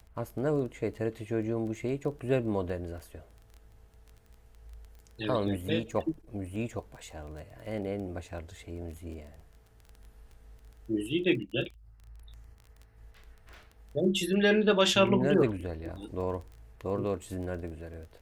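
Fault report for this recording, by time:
crackle 14/s -40 dBFS

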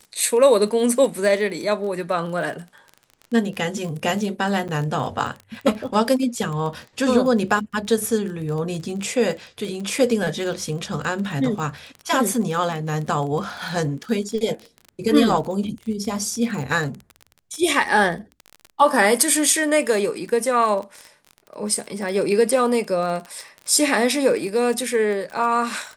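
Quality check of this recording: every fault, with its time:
crackle 30/s -28 dBFS
4.68–4.69 gap 8.3 ms

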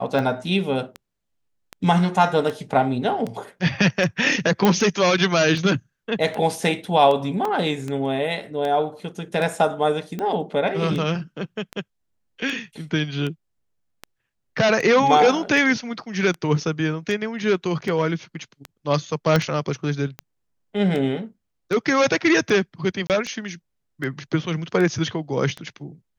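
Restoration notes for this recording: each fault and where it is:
tick 78 rpm
4.65 pop -5 dBFS
7.45 gap 3.3 ms
19.36 pop -6 dBFS
23.07–23.1 gap 28 ms

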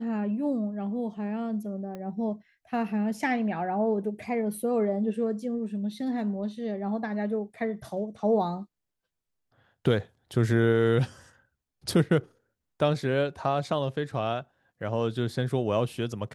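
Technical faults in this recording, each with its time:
1.95 pop -26 dBFS

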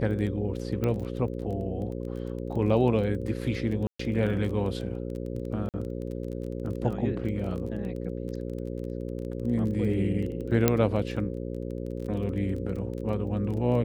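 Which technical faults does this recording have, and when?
buzz 60 Hz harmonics 9 -34 dBFS
crackle 18/s -35 dBFS
0.84 pop -17 dBFS
3.87–3.99 gap 0.124 s
5.69–5.74 gap 48 ms
10.68 pop -6 dBFS

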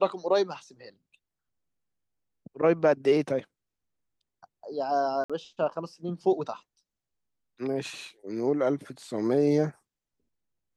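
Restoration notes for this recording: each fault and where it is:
5.24–5.3 gap 56 ms

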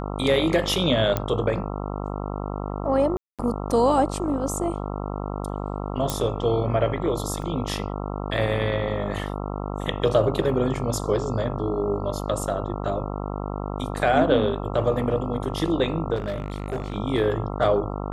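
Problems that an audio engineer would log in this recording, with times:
buzz 50 Hz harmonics 27 -30 dBFS
1.17 pop -10 dBFS
3.17–3.39 gap 0.217 s
6.1 pop
7.42 gap 2.2 ms
16.15–16.97 clipped -23.5 dBFS

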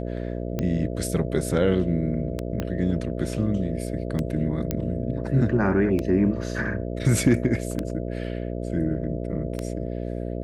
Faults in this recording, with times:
buzz 60 Hz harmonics 11 -30 dBFS
tick 33 1/3 rpm -14 dBFS
2.6 pop -14 dBFS
4.71 pop -10 dBFS

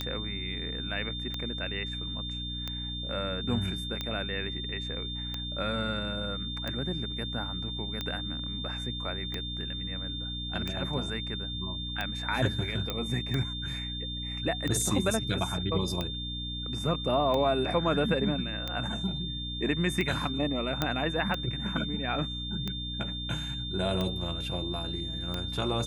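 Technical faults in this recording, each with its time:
hum 60 Hz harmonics 5 -38 dBFS
tick 45 rpm -18 dBFS
tone 3600 Hz -36 dBFS
12.9 pop -17 dBFS
20.82 pop -12 dBFS

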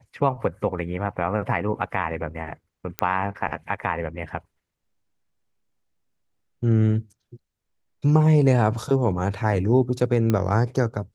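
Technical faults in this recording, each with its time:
2.99 pop -9 dBFS
10.3 pop -10 dBFS

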